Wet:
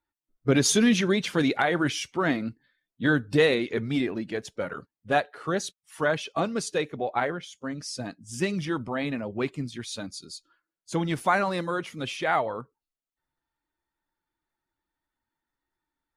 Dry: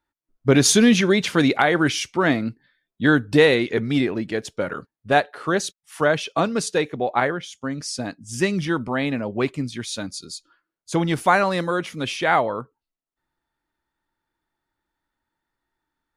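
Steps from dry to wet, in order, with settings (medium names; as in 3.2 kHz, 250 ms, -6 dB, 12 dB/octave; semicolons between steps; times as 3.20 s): coarse spectral quantiser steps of 15 dB; trim -5.5 dB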